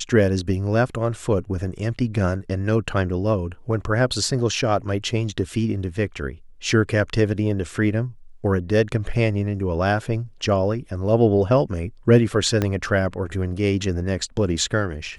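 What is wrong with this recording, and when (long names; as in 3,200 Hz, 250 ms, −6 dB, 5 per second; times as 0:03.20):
0:12.62: click −8 dBFS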